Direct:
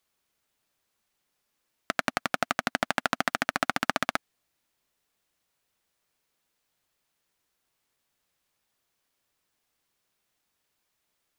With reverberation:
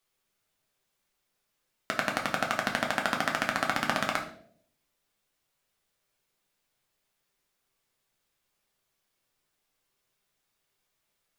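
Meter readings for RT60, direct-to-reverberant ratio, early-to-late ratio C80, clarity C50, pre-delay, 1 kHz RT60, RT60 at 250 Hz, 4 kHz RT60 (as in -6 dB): 0.65 s, 0.5 dB, 12.5 dB, 9.0 dB, 5 ms, 0.50 s, 0.70 s, 0.45 s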